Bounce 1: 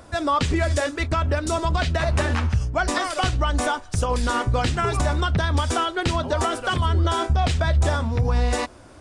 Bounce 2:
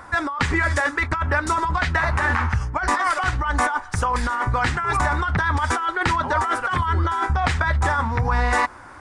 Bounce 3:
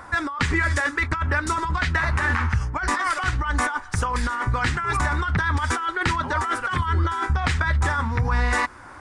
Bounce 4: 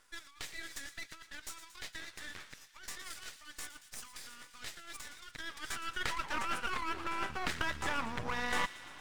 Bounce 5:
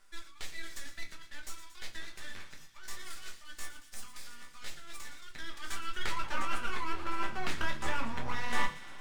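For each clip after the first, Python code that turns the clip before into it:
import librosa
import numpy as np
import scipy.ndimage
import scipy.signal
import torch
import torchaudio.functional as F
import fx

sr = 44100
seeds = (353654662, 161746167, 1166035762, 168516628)

y1 = fx.band_shelf(x, sr, hz=1300.0, db=13.0, octaves=1.7)
y1 = fx.notch(y1, sr, hz=660.0, q=12.0)
y1 = fx.over_compress(y1, sr, threshold_db=-17.0, ratio=-1.0)
y1 = F.gain(torch.from_numpy(y1), -3.5).numpy()
y2 = fx.dynamic_eq(y1, sr, hz=720.0, q=1.2, threshold_db=-35.0, ratio=4.0, max_db=-7)
y3 = fx.filter_sweep_highpass(y2, sr, from_hz=3500.0, to_hz=200.0, start_s=5.23, end_s=7.54, q=0.78)
y3 = np.maximum(y3, 0.0)
y3 = fx.echo_wet_highpass(y3, sr, ms=115, feedback_pct=74, hz=2300.0, wet_db=-13.0)
y3 = F.gain(torch.from_numpy(y3), -6.5).numpy()
y4 = fx.room_shoebox(y3, sr, seeds[0], volume_m3=120.0, walls='furnished', distance_m=1.2)
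y4 = F.gain(torch.from_numpy(y4), -2.5).numpy()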